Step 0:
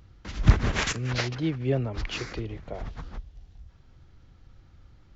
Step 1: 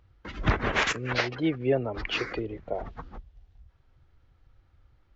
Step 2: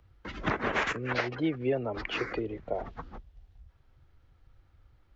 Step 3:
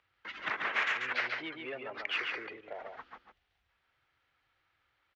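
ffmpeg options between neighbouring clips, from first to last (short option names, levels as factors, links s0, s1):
-filter_complex "[0:a]afftdn=nr=13:nf=-41,bass=f=250:g=-13,treble=f=4000:g=-9,asplit=2[s0][s1];[s1]alimiter=limit=0.0708:level=0:latency=1:release=360,volume=1.26[s2];[s0][s2]amix=inputs=2:normalize=0"
-filter_complex "[0:a]acrossover=split=160|2500|6600[s0][s1][s2][s3];[s0]acompressor=threshold=0.00708:ratio=4[s4];[s1]acompressor=threshold=0.0562:ratio=4[s5];[s2]acompressor=threshold=0.00447:ratio=4[s6];[s3]acompressor=threshold=0.00178:ratio=4[s7];[s4][s5][s6][s7]amix=inputs=4:normalize=0"
-filter_complex "[0:a]aecho=1:1:139:0.562,asplit=2[s0][s1];[s1]asoftclip=type=tanh:threshold=0.0316,volume=0.631[s2];[s0][s2]amix=inputs=2:normalize=0,bandpass=f=2300:t=q:w=1.1:csg=0,volume=0.841"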